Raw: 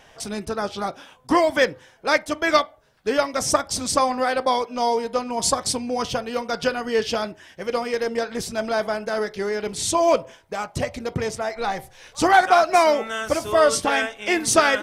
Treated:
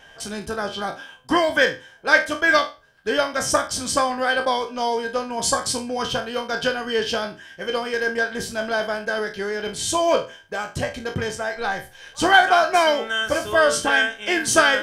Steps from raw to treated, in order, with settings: spectral trails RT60 0.30 s; small resonant body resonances 1600/3100 Hz, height 18 dB, ringing for 70 ms; gain -2 dB

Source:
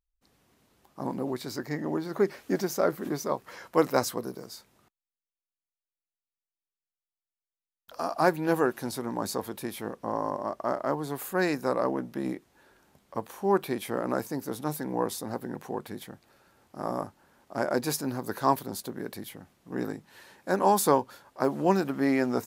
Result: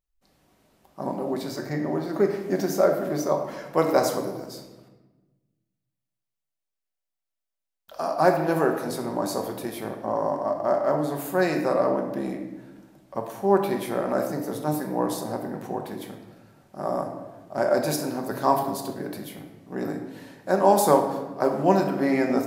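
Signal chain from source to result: bell 640 Hz +6.5 dB 0.51 oct; on a send: reverb RT60 1.2 s, pre-delay 5 ms, DRR 2.5 dB

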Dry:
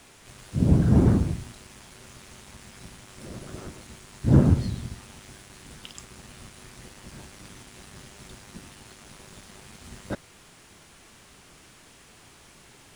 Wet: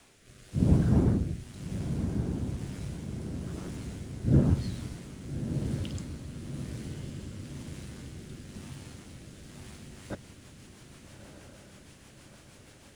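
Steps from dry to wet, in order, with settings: rotary speaker horn 1 Hz, later 6.3 Hz, at 9.55; diffused feedback echo 1.27 s, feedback 58%, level -7 dB; gain -3 dB

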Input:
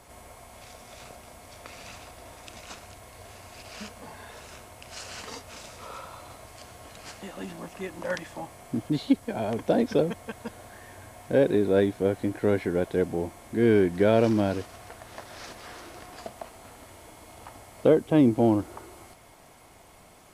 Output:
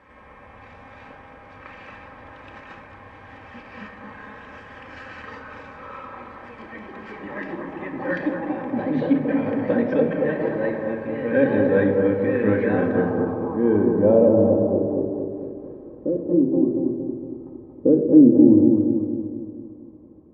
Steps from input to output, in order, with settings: echoes that change speed 0.15 s, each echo +2 st, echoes 3, each echo -6 dB; notch comb 700 Hz; low-pass sweep 1900 Hz -> 360 Hz, 12.59–15.18; analogue delay 0.23 s, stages 2048, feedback 53%, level -4 dB; shoebox room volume 2600 m³, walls furnished, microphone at 2.1 m; gain -1 dB

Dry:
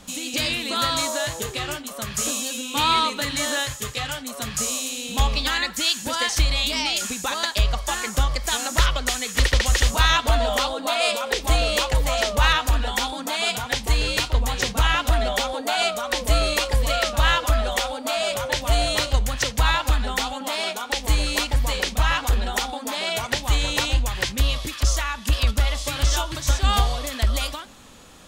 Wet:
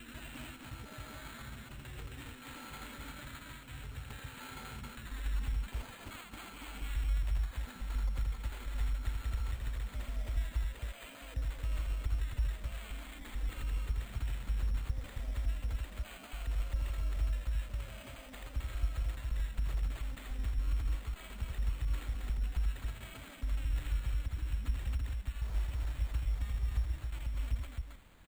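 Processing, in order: slices in reverse order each 0.142 s, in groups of 5; compressor, threshold -23 dBFS, peak gain reduction 10 dB; requantised 8-bit, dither triangular; passive tone stack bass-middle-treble 10-0-1; loudspeakers at several distances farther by 28 m -3 dB, 92 m -2 dB; careless resampling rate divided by 8×, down none, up hold; gain -1.5 dB

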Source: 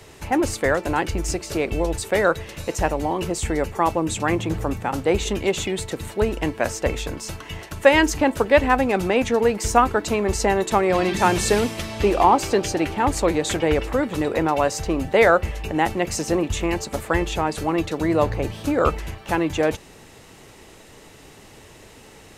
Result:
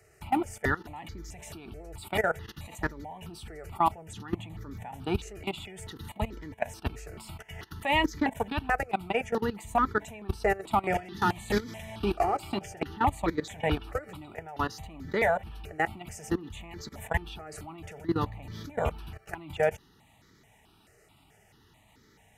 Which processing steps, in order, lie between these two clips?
level quantiser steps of 19 dB; notch comb 530 Hz; step phaser 4.6 Hz 950–2700 Hz

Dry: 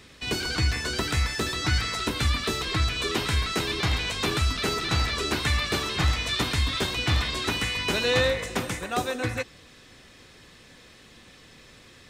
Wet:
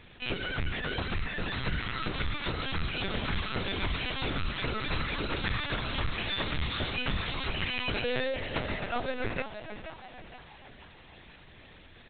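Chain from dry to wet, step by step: compressor 5:1, threshold -26 dBFS, peak gain reduction 7.5 dB; frequency-shifting echo 0.474 s, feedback 49%, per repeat +110 Hz, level -10 dB; LPC vocoder at 8 kHz pitch kept; gain -1.5 dB

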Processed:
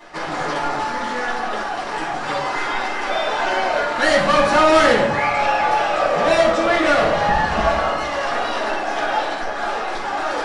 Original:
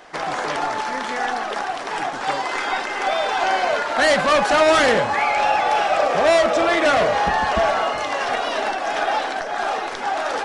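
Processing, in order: reverse; upward compressor, threshold -23 dBFS; reverse; shoebox room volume 770 m³, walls furnished, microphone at 9.9 m; gain -11 dB

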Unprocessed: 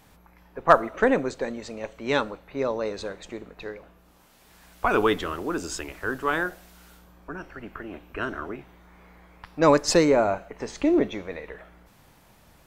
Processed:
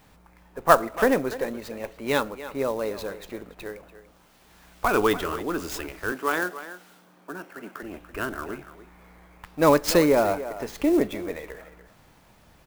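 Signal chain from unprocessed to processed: 6.12–7.83 HPF 180 Hz 24 dB/oct; speakerphone echo 0.29 s, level -13 dB; clock jitter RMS 0.023 ms

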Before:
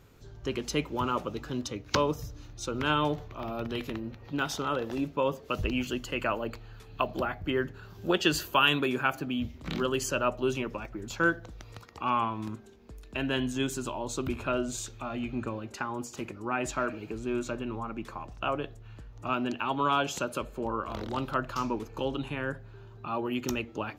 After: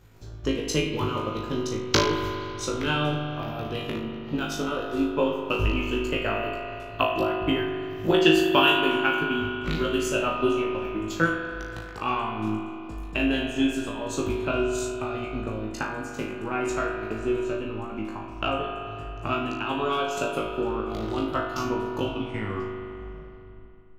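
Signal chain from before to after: tape stop at the end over 2.00 s; dynamic EQ 1100 Hz, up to -5 dB, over -42 dBFS, Q 0.78; transient shaper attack +8 dB, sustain -9 dB; flutter echo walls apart 3.2 m, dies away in 0.39 s; spring tank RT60 2.8 s, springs 40 ms, chirp 40 ms, DRR 2.5 dB; gain -1 dB

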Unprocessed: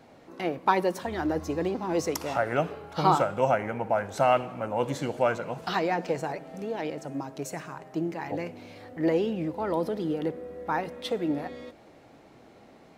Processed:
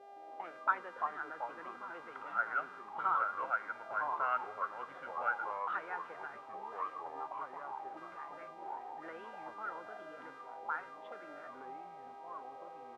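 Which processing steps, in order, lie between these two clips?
downsampling 8000 Hz; buzz 400 Hz, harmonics 31, -41 dBFS -4 dB/oct; auto-wah 530–1400 Hz, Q 10, up, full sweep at -27 dBFS; echoes that change speed 0.165 s, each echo -4 st, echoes 2, each echo -6 dB; gain +3 dB

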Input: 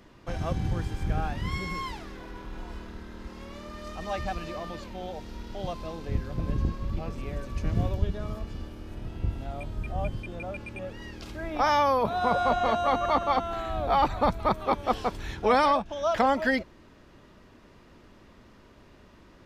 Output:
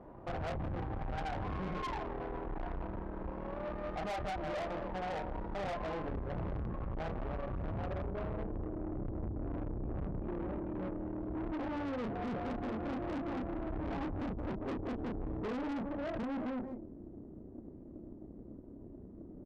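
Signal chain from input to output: low-pass sweep 780 Hz -> 320 Hz, 7.58–9.04; speakerphone echo 0.16 s, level -13 dB; compressor 8:1, threshold -28 dBFS, peak gain reduction 10.5 dB; doubler 32 ms -4.5 dB; tube stage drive 40 dB, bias 0.75; gain +4.5 dB

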